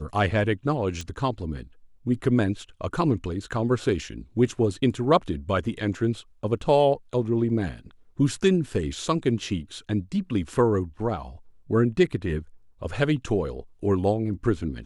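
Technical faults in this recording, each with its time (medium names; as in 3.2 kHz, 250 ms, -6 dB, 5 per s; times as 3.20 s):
1.01 s: pop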